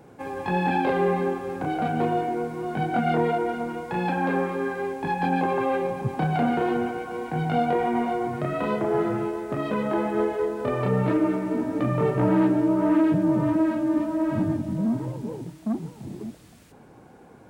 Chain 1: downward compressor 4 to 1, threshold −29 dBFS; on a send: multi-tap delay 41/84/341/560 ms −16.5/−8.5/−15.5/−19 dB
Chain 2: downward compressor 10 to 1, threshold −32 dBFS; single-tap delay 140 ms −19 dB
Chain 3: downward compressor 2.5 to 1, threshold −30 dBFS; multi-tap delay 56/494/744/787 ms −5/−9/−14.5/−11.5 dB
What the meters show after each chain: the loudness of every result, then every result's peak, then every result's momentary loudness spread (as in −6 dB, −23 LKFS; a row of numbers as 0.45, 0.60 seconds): −31.5, −36.0, −29.0 LKFS; −18.0, −22.5, −16.0 dBFS; 5, 3, 6 LU